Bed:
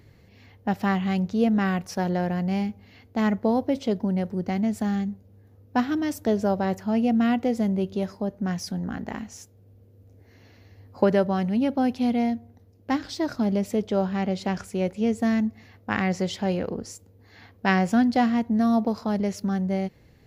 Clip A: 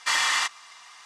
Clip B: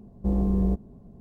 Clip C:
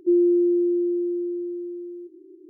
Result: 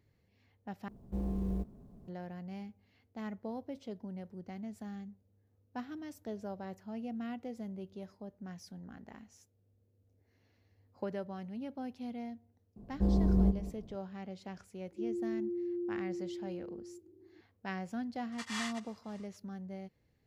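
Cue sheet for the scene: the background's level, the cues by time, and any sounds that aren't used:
bed -18.5 dB
0.88 s: replace with B -12 dB + companding laws mixed up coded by mu
12.76 s: add B -4 dB + echo from a far wall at 33 m, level -13 dB
14.92 s: add C -12.5 dB + peak limiter -21 dBFS
18.32 s: add A -14 dB + tremolo of two beating tones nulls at 3.6 Hz

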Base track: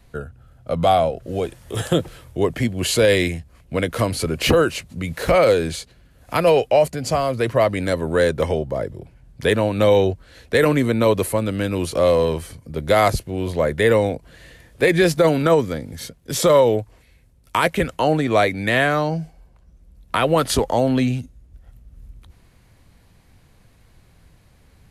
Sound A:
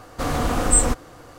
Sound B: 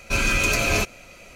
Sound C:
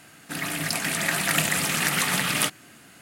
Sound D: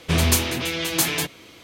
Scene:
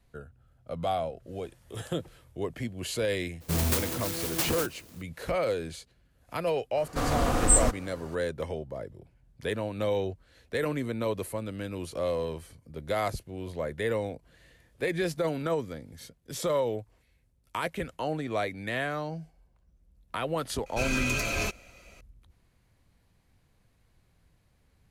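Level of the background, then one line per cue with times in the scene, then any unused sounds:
base track -13.5 dB
3.40 s: add D -7.5 dB, fades 0.02 s + sampling jitter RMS 0.14 ms
6.77 s: add A -4 dB
20.66 s: add B -8.5 dB
not used: C

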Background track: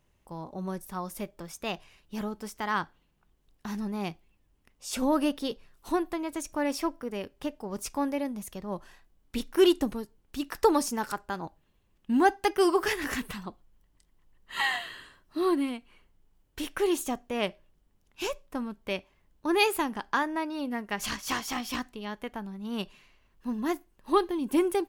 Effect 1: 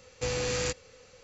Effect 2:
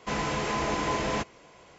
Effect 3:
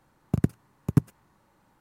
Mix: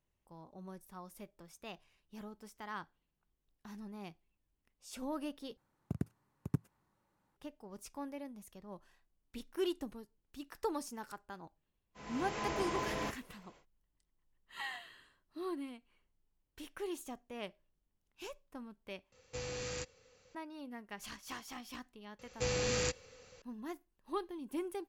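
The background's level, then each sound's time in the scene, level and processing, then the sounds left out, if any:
background track -14.5 dB
5.57 s: replace with 3 -14 dB
11.88 s: add 2 -9.5 dB, fades 0.10 s + fade-in on the opening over 0.56 s
19.12 s: replace with 1 -11 dB
22.19 s: add 1 -3.5 dB

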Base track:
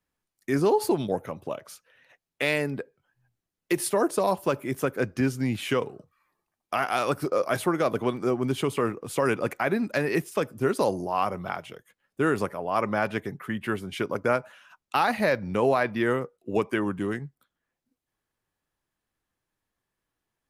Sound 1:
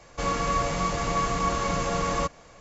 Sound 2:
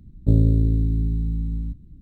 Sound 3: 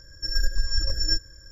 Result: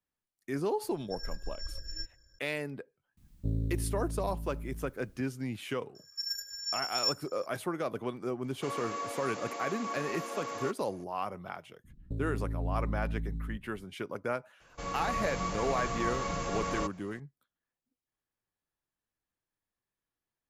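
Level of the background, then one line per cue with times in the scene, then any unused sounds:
base track -9.5 dB
0.88 s: add 3 -16 dB
3.17 s: add 2 -15.5 dB + word length cut 10-bit, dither triangular
5.95 s: add 3 -2.5 dB + differentiator
8.44 s: add 1 -10.5 dB + elliptic high-pass 230 Hz
11.84 s: add 2 -10.5 dB + peak limiter -16.5 dBFS
14.60 s: add 1 -11.5 dB + level rider gain up to 4 dB

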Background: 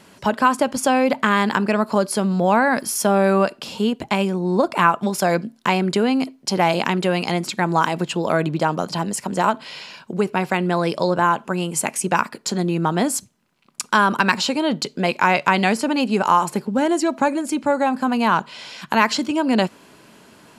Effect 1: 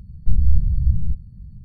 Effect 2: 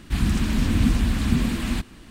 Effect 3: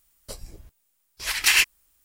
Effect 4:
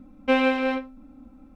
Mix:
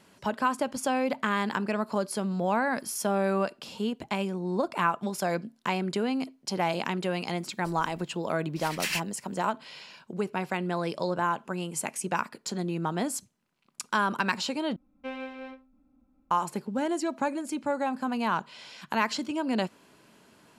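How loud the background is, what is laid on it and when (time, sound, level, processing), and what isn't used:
background -10 dB
7.36 s: add 3 -12.5 dB
14.76 s: replace with 4 -17 dB
not used: 1, 2

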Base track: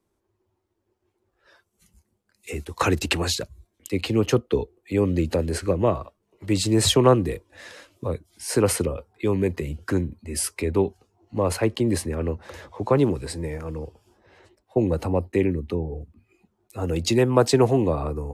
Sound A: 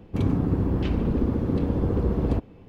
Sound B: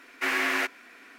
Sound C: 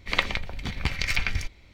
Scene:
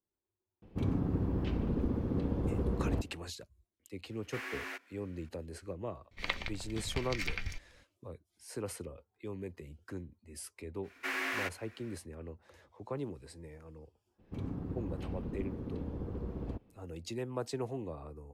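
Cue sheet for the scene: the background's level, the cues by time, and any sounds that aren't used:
base track -19.5 dB
0.62 s: add A -9 dB
4.11 s: add B -15.5 dB
6.11 s: add C -11 dB
10.82 s: add B -9 dB, fades 0.05 s
14.18 s: add A -16 dB, fades 0.02 s

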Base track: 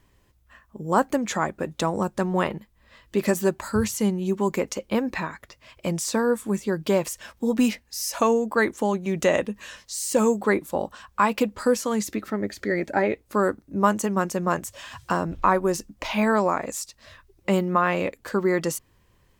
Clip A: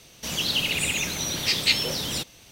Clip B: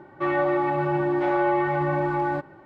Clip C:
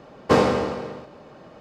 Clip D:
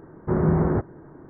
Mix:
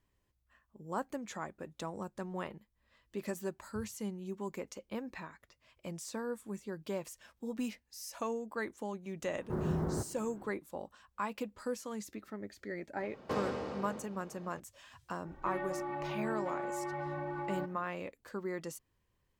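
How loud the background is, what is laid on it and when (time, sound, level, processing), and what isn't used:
base track -16.5 dB
9.22 s: add D -13.5 dB + companding laws mixed up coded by mu
13.00 s: add C -9 dB + compression 2:1, threshold -30 dBFS
15.25 s: add B -9 dB + compression, threshold -26 dBFS
not used: A

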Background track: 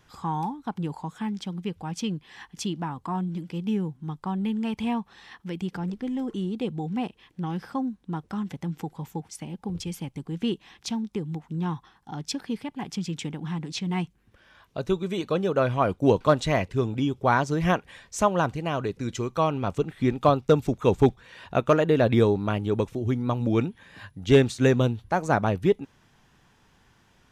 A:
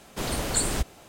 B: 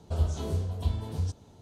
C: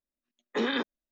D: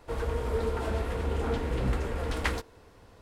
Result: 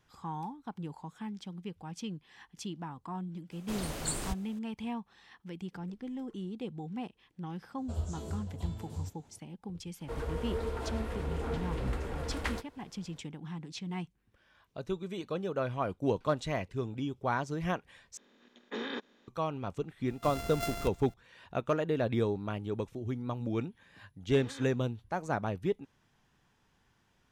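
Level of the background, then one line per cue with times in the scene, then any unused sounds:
background track -10 dB
3.51 s: add A -9.5 dB
7.78 s: add B -8.5 dB + peaking EQ 7.4 kHz +12 dB 0.22 oct
10.00 s: add D -5.5 dB
18.17 s: replace with C -12 dB + spectral levelling over time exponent 0.4
20.06 s: add A -11 dB + sorted samples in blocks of 64 samples
23.82 s: add C -11 dB + compression, threshold -32 dBFS

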